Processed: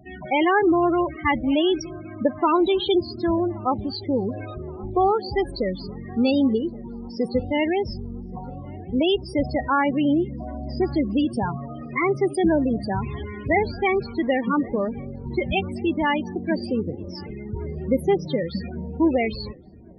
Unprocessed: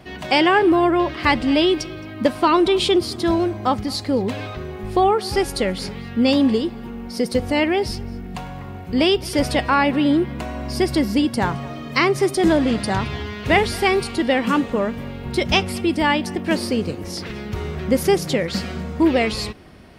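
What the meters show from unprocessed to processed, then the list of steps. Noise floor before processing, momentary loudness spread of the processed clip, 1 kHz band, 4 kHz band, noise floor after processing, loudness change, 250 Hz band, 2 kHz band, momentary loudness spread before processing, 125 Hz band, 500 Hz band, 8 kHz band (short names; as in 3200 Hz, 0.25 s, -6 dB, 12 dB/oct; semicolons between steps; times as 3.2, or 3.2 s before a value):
-34 dBFS, 13 LU, -3.5 dB, -8.5 dB, -37 dBFS, -3.5 dB, -3.0 dB, -5.5 dB, 13 LU, -3.5 dB, -3.0 dB, under -15 dB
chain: loudest bins only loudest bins 16; on a send: darkening echo 1.123 s, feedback 71%, low-pass 1200 Hz, level -22.5 dB; on the sum: gain -3 dB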